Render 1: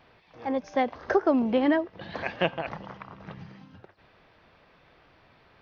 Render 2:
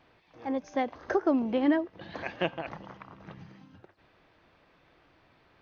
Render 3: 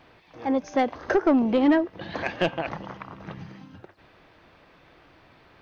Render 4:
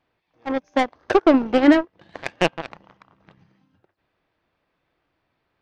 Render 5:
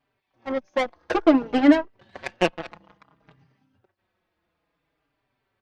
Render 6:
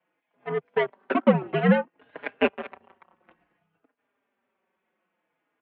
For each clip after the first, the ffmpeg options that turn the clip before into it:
ffmpeg -i in.wav -af "superequalizer=6b=1.58:15b=1.78,volume=-4.5dB" out.wav
ffmpeg -i in.wav -af "asoftclip=type=tanh:threshold=-21dB,volume=8dB" out.wav
ffmpeg -i in.wav -af "aeval=exprs='0.224*(cos(1*acos(clip(val(0)/0.224,-1,1)))-cos(1*PI/2))+0.0708*(cos(3*acos(clip(val(0)/0.224,-1,1)))-cos(3*PI/2))':channel_layout=same,volume=7.5dB" out.wav
ffmpeg -i in.wav -filter_complex "[0:a]asplit=2[link_01][link_02];[link_02]adelay=4.6,afreqshift=-0.58[link_03];[link_01][link_03]amix=inputs=2:normalize=1" out.wav
ffmpeg -i in.wav -af "highpass=frequency=320:width_type=q:width=0.5412,highpass=frequency=320:width_type=q:width=1.307,lowpass=frequency=3100:width_type=q:width=0.5176,lowpass=frequency=3100:width_type=q:width=0.7071,lowpass=frequency=3100:width_type=q:width=1.932,afreqshift=-100" out.wav

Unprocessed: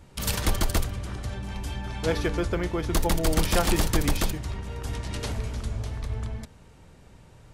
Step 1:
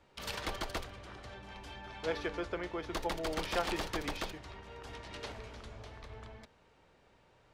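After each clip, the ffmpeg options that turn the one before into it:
ffmpeg -i in.wav -filter_complex "[0:a]acrossover=split=330 5100:gain=0.224 1 0.178[link_01][link_02][link_03];[link_01][link_02][link_03]amix=inputs=3:normalize=0,volume=-7dB" out.wav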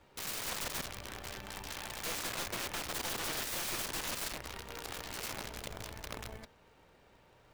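ffmpeg -i in.wav -af "acrusher=bits=4:mode=log:mix=0:aa=0.000001,aeval=exprs='0.0944*(cos(1*acos(clip(val(0)/0.0944,-1,1)))-cos(1*PI/2))+0.00841*(cos(3*acos(clip(val(0)/0.0944,-1,1)))-cos(3*PI/2))+0.0211*(cos(8*acos(clip(val(0)/0.0944,-1,1)))-cos(8*PI/2))':channel_layout=same,aeval=exprs='(mod(66.8*val(0)+1,2)-1)/66.8':channel_layout=same,volume=5dB" out.wav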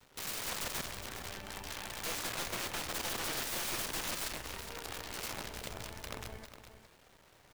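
ffmpeg -i in.wav -filter_complex "[0:a]acrusher=bits=9:mix=0:aa=0.000001,asplit=2[link_01][link_02];[link_02]aecho=0:1:412:0.299[link_03];[link_01][link_03]amix=inputs=2:normalize=0" out.wav

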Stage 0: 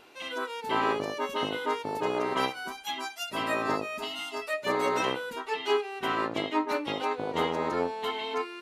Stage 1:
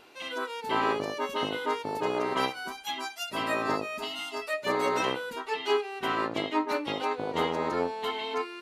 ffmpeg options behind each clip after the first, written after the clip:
ffmpeg -i in.wav -af "equalizer=frequency=4500:width=6.5:gain=2.5" out.wav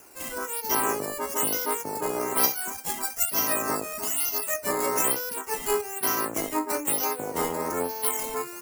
ffmpeg -i in.wav -filter_complex "[0:a]acrossover=split=110|710|3000[link_01][link_02][link_03][link_04];[link_04]acrusher=samples=10:mix=1:aa=0.000001:lfo=1:lforange=10:lforate=1.1[link_05];[link_01][link_02][link_03][link_05]amix=inputs=4:normalize=0,aexciter=amount=12.9:drive=5.9:freq=5300" out.wav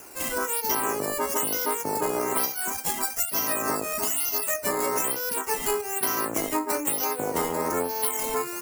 ffmpeg -i in.wav -af "acompressor=threshold=-28dB:ratio=10,volume=6dB" out.wav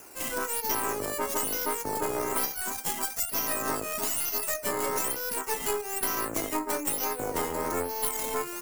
ffmpeg -i in.wav -af "aeval=exprs='0.355*(cos(1*acos(clip(val(0)/0.355,-1,1)))-cos(1*PI/2))+0.0282*(cos(6*acos(clip(val(0)/0.355,-1,1)))-cos(6*PI/2))':channel_layout=same,volume=-3.5dB" out.wav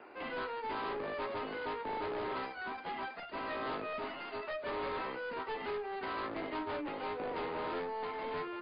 ffmpeg -i in.wav -filter_complex "[0:a]acrossover=split=200 2700:gain=0.141 1 0.0794[link_01][link_02][link_03];[link_01][link_02][link_03]amix=inputs=3:normalize=0,asoftclip=type=tanh:threshold=-35.5dB,volume=1dB" -ar 11025 -c:a libmp3lame -b:a 24k out.mp3

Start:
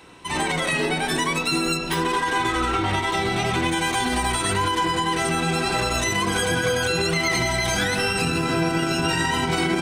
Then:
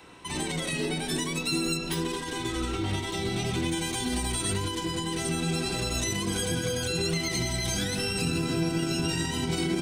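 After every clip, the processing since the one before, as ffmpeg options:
ffmpeg -i in.wav -filter_complex "[0:a]acrossover=split=450|3000[link_01][link_02][link_03];[link_02]acompressor=threshold=-38dB:ratio=5[link_04];[link_01][link_04][link_03]amix=inputs=3:normalize=0,volume=-3dB" out.wav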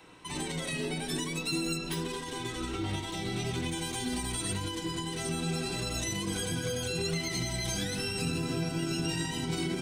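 ffmpeg -i in.wav -af "flanger=delay=6.3:depth=1.5:regen=-54:speed=0.65:shape=sinusoidal" out.wav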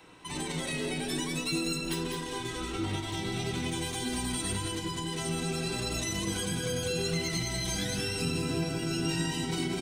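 ffmpeg -i in.wav -af "aecho=1:1:201:0.501" out.wav

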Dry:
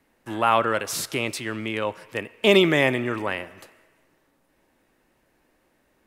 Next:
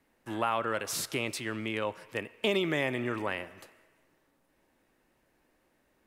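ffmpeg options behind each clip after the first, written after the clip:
ffmpeg -i in.wav -af "acompressor=threshold=-21dB:ratio=3,volume=-5dB" out.wav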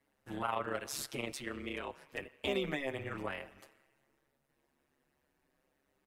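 ffmpeg -i in.wav -filter_complex "[0:a]tremolo=f=140:d=0.857,asplit=2[link_01][link_02];[link_02]adelay=7.4,afreqshift=0.33[link_03];[link_01][link_03]amix=inputs=2:normalize=1" out.wav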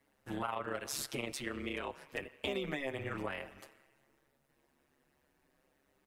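ffmpeg -i in.wav -af "acompressor=threshold=-39dB:ratio=2.5,volume=3.5dB" out.wav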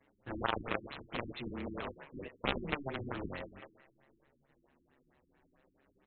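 ffmpeg -i in.wav -af "aeval=exprs='0.1*(cos(1*acos(clip(val(0)/0.1,-1,1)))-cos(1*PI/2))+0.00891*(cos(3*acos(clip(val(0)/0.1,-1,1)))-cos(3*PI/2))+0.02*(cos(7*acos(clip(val(0)/0.1,-1,1)))-cos(7*PI/2))':channel_layout=same,afftfilt=real='re*lt(b*sr/1024,350*pow(4300/350,0.5+0.5*sin(2*PI*4.5*pts/sr)))':imag='im*lt(b*sr/1024,350*pow(4300/350,0.5+0.5*sin(2*PI*4.5*pts/sr)))':win_size=1024:overlap=0.75,volume=8dB" out.wav

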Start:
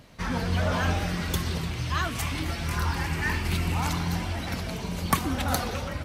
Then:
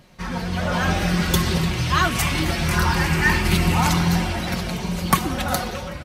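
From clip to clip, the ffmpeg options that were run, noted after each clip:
ffmpeg -i in.wav -af "aecho=1:1:5.5:0.43,dynaudnorm=framelen=250:gausssize=7:maxgain=9dB" out.wav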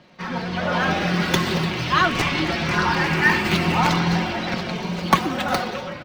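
ffmpeg -i in.wav -filter_complex "[0:a]highpass=180,acrossover=split=470|5500[link_01][link_02][link_03];[link_03]acrusher=samples=39:mix=1:aa=0.000001:lfo=1:lforange=62.4:lforate=0.51[link_04];[link_01][link_02][link_04]amix=inputs=3:normalize=0,volume=2dB" out.wav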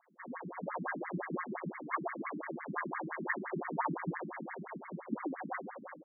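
ffmpeg -i in.wav -af "asuperstop=centerf=1400:order=8:qfactor=4.4,aeval=exprs='max(val(0),0)':channel_layout=same,afftfilt=real='re*between(b*sr/1024,220*pow(1600/220,0.5+0.5*sin(2*PI*5.8*pts/sr))/1.41,220*pow(1600/220,0.5+0.5*sin(2*PI*5.8*pts/sr))*1.41)':imag='im*between(b*sr/1024,220*pow(1600/220,0.5+0.5*sin(2*PI*5.8*pts/sr))/1.41,220*pow(1600/220,0.5+0.5*sin(2*PI*5.8*pts/sr))*1.41)':win_size=1024:overlap=0.75,volume=-4.5dB" out.wav

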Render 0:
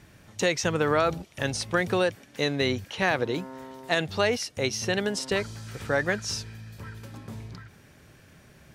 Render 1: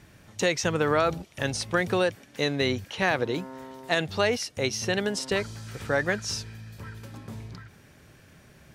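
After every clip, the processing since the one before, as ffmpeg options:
ffmpeg -i in.wav -af anull out.wav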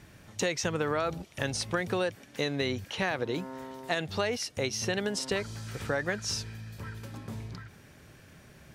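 ffmpeg -i in.wav -af "acompressor=threshold=-28dB:ratio=2.5" out.wav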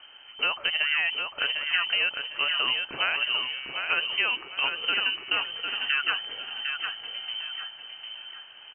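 ffmpeg -i in.wav -af "aecho=1:1:753|1506|2259|3012:0.501|0.155|0.0482|0.0149,lowpass=frequency=2700:width_type=q:width=0.5098,lowpass=frequency=2700:width_type=q:width=0.6013,lowpass=frequency=2700:width_type=q:width=0.9,lowpass=frequency=2700:width_type=q:width=2.563,afreqshift=-3200,volume=3.5dB" out.wav

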